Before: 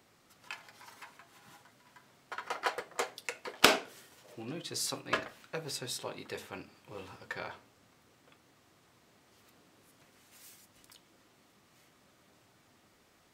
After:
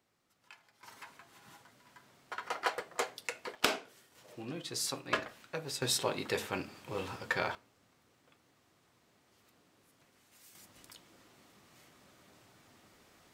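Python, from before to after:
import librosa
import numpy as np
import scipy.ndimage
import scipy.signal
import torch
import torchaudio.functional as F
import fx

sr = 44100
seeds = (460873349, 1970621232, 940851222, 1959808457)

y = fx.gain(x, sr, db=fx.steps((0.0, -12.0), (0.83, 0.0), (3.55, -7.0), (4.15, -0.5), (5.82, 7.5), (7.55, -4.5), (10.55, 3.0)))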